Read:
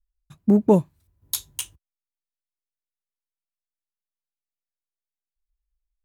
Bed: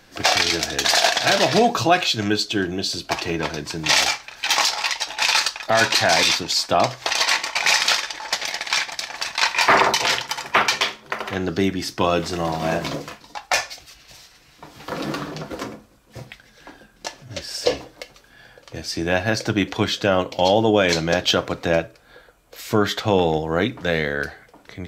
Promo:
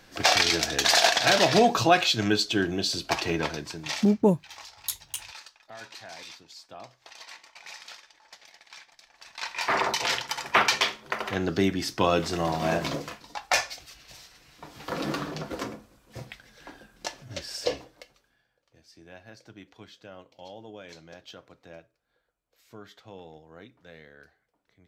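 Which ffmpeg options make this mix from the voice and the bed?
ffmpeg -i stem1.wav -i stem2.wav -filter_complex "[0:a]adelay=3550,volume=-4.5dB[link_01];[1:a]volume=20dB,afade=type=out:start_time=3.36:duration=0.7:silence=0.0668344,afade=type=in:start_time=9.17:duration=1.41:silence=0.0707946,afade=type=out:start_time=17.11:duration=1.34:silence=0.0630957[link_02];[link_01][link_02]amix=inputs=2:normalize=0" out.wav

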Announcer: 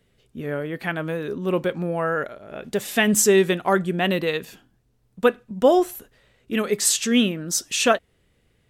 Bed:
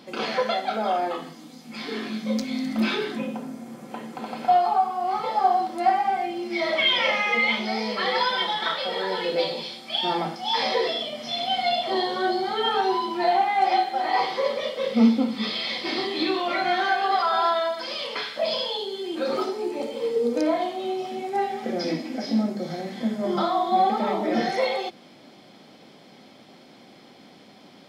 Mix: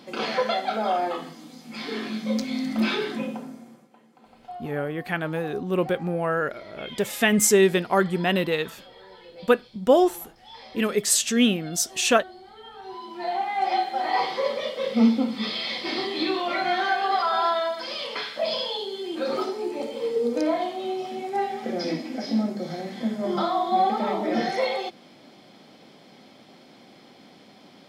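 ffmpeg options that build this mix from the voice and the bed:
ffmpeg -i stem1.wav -i stem2.wav -filter_complex "[0:a]adelay=4250,volume=-1dB[link_01];[1:a]volume=19.5dB,afade=type=out:start_time=3.24:duration=0.66:silence=0.0944061,afade=type=in:start_time=12.79:duration=1.19:silence=0.105925[link_02];[link_01][link_02]amix=inputs=2:normalize=0" out.wav

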